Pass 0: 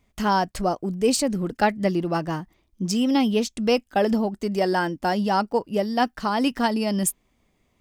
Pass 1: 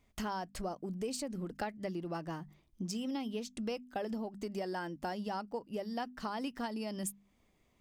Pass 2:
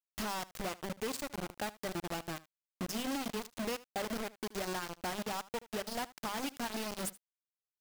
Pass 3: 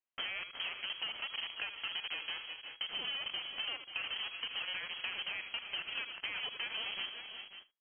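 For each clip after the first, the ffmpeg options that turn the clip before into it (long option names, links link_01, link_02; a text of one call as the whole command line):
ffmpeg -i in.wav -af "bandreject=frequency=50:width_type=h:width=6,bandreject=frequency=100:width_type=h:width=6,bandreject=frequency=150:width_type=h:width=6,bandreject=frequency=200:width_type=h:width=6,bandreject=frequency=250:width_type=h:width=6,acompressor=threshold=-33dB:ratio=4,volume=-4.5dB" out.wav
ffmpeg -i in.wav -af "acrusher=bits=5:mix=0:aa=0.000001,aecho=1:1:76:0.106,volume=-1.5dB" out.wav
ffmpeg -i in.wav -af "aecho=1:1:77|352|382|537:0.211|0.188|0.15|0.178,lowpass=frequency=2800:width_type=q:width=0.5098,lowpass=frequency=2800:width_type=q:width=0.6013,lowpass=frequency=2800:width_type=q:width=0.9,lowpass=frequency=2800:width_type=q:width=2.563,afreqshift=-3300,acompressor=threshold=-39dB:ratio=6,volume=3dB" out.wav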